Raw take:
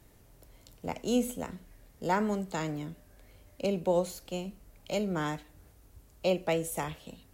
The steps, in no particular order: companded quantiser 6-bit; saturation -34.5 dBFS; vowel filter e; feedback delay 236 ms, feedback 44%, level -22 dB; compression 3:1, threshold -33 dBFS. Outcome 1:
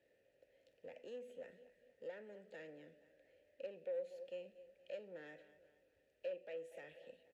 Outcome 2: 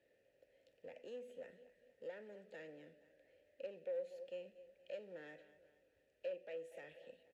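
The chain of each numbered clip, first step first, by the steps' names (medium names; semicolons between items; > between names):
feedback delay > companded quantiser > compression > saturation > vowel filter; feedback delay > compression > saturation > companded quantiser > vowel filter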